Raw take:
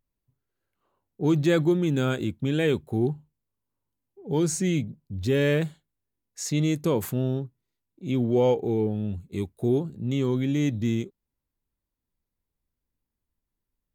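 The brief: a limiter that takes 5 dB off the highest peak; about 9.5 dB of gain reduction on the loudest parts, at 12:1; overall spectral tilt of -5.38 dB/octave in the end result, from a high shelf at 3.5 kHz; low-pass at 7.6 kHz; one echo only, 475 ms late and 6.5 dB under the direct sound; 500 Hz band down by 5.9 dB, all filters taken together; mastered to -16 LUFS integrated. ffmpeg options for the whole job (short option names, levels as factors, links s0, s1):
-af "lowpass=7600,equalizer=f=500:t=o:g=-8,highshelf=f=3500:g=6.5,acompressor=threshold=0.0316:ratio=12,alimiter=level_in=1.33:limit=0.0631:level=0:latency=1,volume=0.75,aecho=1:1:475:0.473,volume=10.6"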